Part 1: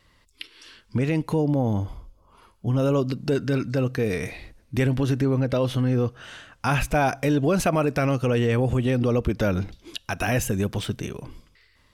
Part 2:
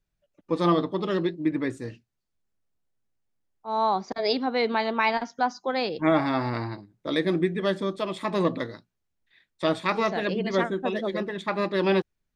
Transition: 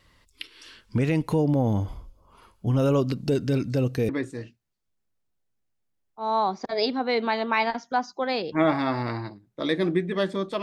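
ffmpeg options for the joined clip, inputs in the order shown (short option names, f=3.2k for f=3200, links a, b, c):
-filter_complex "[0:a]asettb=1/sr,asplit=3[a][b][c];[a]atrim=end=3.214[d];[b]atrim=start=3.21:end=4.09,asetpts=PTS-STARTPTS,afade=t=in:d=0.004:c=qsin,afade=t=out:st=0.876:d=0.004:c=qsin,equalizer=f=1.4k:w=1.1:g=-8[e];[c]atrim=start=4.086[f];[d][e]acrossfade=d=0.004:c1=hsin:c2=qsin[g];[g][f]acrossfade=d=0.004:c1=qsin:c2=hsin,apad=whole_dur=10.62,atrim=end=10.62,atrim=end=4.092[h];[1:a]atrim=start=1.558:end=8.09[i];[h][i]acrossfade=d=0.004:c1=hsin:c2=hsin"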